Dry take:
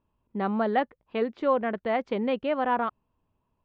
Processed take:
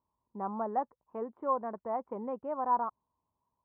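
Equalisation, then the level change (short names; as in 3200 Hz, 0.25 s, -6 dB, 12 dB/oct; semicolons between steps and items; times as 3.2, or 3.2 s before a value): HPF 50 Hz; ladder low-pass 1100 Hz, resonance 65%; -1.0 dB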